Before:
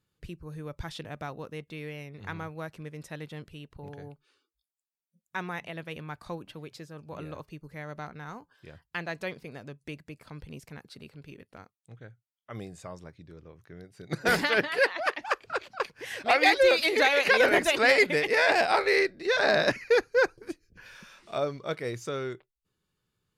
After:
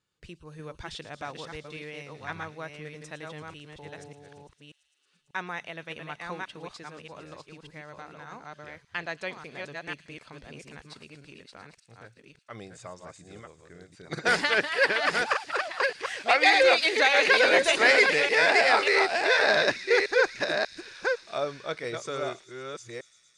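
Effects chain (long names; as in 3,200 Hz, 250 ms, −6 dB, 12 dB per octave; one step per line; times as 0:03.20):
delay that plays each chunk backwards 590 ms, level −4 dB
Butterworth low-pass 9,300 Hz 36 dB per octave
low-shelf EQ 370 Hz −9.5 dB
0:06.98–0:08.32: downward compressor 2 to 1, threshold −45 dBFS, peak gain reduction 6 dB
delay with a high-pass on its return 113 ms, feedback 84%, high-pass 5,000 Hz, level −11 dB
level +2 dB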